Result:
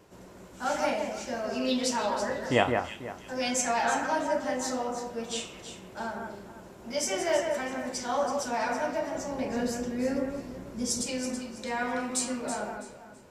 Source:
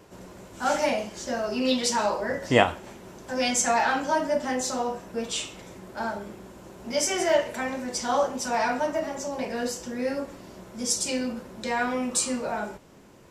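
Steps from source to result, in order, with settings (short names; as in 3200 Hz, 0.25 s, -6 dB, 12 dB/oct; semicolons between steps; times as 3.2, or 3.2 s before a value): 9.15–11.02 low shelf 290 Hz +9.5 dB; echo with dull and thin repeats by turns 0.164 s, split 2200 Hz, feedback 52%, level -4 dB; gain -5 dB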